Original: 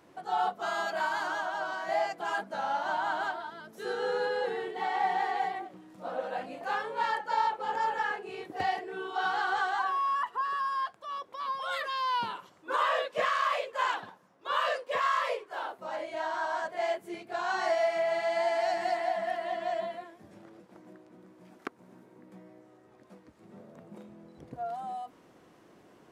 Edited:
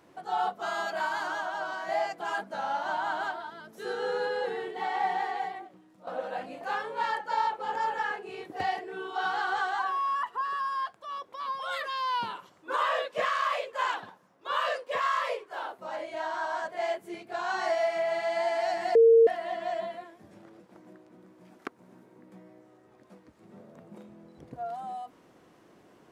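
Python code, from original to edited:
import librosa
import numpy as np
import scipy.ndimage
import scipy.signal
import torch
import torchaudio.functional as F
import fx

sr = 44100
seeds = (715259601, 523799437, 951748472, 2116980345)

y = fx.edit(x, sr, fx.fade_out_to(start_s=5.07, length_s=1.0, floor_db=-10.0),
    fx.bleep(start_s=18.95, length_s=0.32, hz=457.0, db=-14.0), tone=tone)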